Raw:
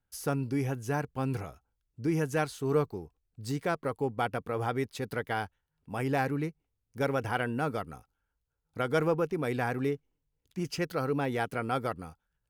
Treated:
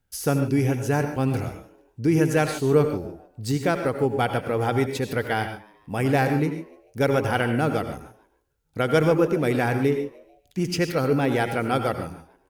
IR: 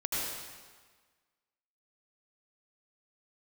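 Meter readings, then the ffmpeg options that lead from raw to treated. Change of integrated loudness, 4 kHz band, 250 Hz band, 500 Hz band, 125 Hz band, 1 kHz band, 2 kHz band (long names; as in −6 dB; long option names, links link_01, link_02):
+8.5 dB, +9.0 dB, +9.5 dB, +8.5 dB, +9.0 dB, +6.5 dB, +7.5 dB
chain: -filter_complex "[0:a]equalizer=frequency=1100:width=1.7:gain=-5.5,asplit=4[link_01][link_02][link_03][link_04];[link_02]adelay=147,afreqshift=97,volume=-22dB[link_05];[link_03]adelay=294,afreqshift=194,volume=-29.5dB[link_06];[link_04]adelay=441,afreqshift=291,volume=-37.1dB[link_07];[link_01][link_05][link_06][link_07]amix=inputs=4:normalize=0,asplit=2[link_08][link_09];[1:a]atrim=start_sample=2205,afade=type=out:start_time=0.2:duration=0.01,atrim=end_sample=9261[link_10];[link_09][link_10]afir=irnorm=-1:irlink=0,volume=-8dB[link_11];[link_08][link_11]amix=inputs=2:normalize=0,volume=6dB"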